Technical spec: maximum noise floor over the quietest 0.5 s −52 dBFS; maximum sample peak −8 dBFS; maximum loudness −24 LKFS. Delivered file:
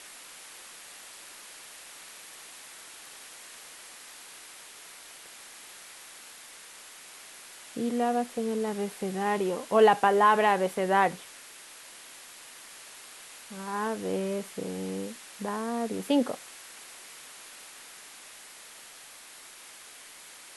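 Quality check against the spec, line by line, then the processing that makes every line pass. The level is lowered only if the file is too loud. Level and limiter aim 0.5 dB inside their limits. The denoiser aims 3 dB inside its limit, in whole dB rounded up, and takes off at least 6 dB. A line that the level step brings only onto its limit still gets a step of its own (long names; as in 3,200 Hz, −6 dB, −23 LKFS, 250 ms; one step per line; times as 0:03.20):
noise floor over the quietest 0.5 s −49 dBFS: out of spec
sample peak −9.5 dBFS: in spec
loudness −27.5 LKFS: in spec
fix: broadband denoise 6 dB, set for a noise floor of −49 dBFS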